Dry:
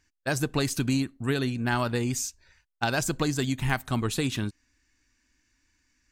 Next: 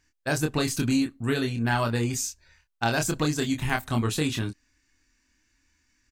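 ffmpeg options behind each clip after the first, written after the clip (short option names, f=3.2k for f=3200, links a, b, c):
-filter_complex "[0:a]asplit=2[a][b];[b]adelay=26,volume=-4.5dB[c];[a][c]amix=inputs=2:normalize=0"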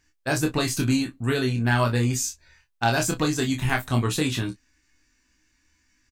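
-af "aecho=1:1:16|32:0.422|0.224,volume=1.5dB"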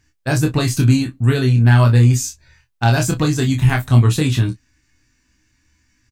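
-af "equalizer=f=110:t=o:w=1.5:g=11,volume=3dB"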